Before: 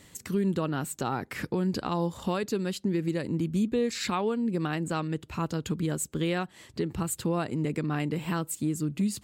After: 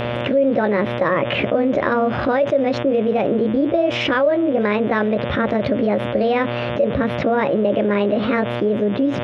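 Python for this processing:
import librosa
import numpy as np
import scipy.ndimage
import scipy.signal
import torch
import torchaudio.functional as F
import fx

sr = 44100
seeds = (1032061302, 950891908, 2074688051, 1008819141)

y = fx.pitch_heads(x, sr, semitones=5.5)
y = scipy.signal.sosfilt(scipy.signal.butter(4, 2900.0, 'lowpass', fs=sr, output='sos'), y)
y = fx.dmg_buzz(y, sr, base_hz=120.0, harmonics=30, level_db=-51.0, tilt_db=-4, odd_only=False)
y = fx.peak_eq(y, sr, hz=570.0, db=14.5, octaves=0.28)
y = fx.env_flatten(y, sr, amount_pct=70)
y = y * librosa.db_to_amplitude(2.0)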